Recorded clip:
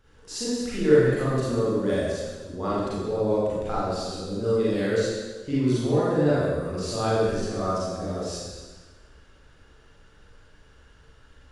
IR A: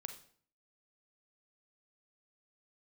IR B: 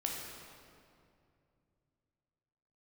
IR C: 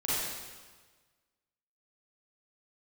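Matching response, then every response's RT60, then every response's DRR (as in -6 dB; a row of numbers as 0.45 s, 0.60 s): C; 0.55 s, 2.5 s, 1.4 s; 6.5 dB, -1.5 dB, -10.0 dB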